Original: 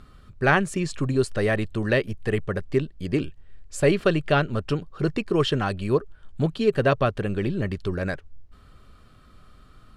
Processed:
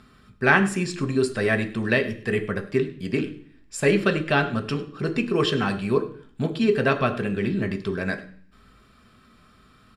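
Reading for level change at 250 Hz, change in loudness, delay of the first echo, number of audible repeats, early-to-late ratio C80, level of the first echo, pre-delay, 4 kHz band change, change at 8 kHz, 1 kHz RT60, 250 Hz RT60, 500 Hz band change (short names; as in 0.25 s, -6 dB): +1.5 dB, +0.5 dB, 0.102 s, 1, 15.5 dB, -18.5 dB, 3 ms, +1.5 dB, +1.5 dB, 0.50 s, 0.70 s, 0.0 dB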